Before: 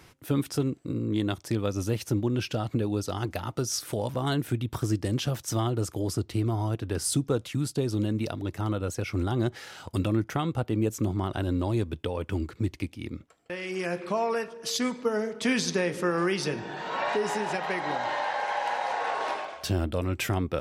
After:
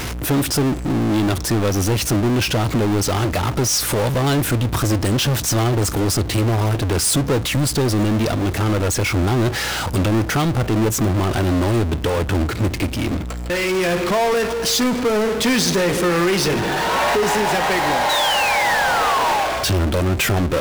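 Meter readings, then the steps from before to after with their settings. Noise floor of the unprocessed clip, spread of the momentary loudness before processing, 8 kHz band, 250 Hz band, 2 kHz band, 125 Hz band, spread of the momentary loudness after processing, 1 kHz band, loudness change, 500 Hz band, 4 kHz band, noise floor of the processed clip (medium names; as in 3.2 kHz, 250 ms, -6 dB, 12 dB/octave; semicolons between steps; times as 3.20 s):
-54 dBFS, 5 LU, +13.5 dB, +9.5 dB, +13.0 dB, +10.0 dB, 4 LU, +11.5 dB, +11.0 dB, +10.0 dB, +14.5 dB, -26 dBFS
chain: hum 60 Hz, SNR 27 dB; painted sound fall, 18.09–19.46 s, 750–4000 Hz -33 dBFS; power-law waveshaper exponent 0.35; trim +1.5 dB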